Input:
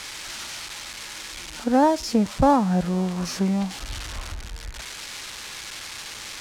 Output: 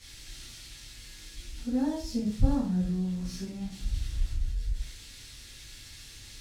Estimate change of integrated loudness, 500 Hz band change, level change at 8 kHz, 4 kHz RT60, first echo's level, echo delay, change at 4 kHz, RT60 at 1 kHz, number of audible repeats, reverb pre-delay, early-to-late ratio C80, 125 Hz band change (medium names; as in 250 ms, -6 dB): -7.0 dB, -16.5 dB, -11.5 dB, 0.45 s, no echo, no echo, -11.5 dB, 0.45 s, no echo, 5 ms, 9.0 dB, -4.0 dB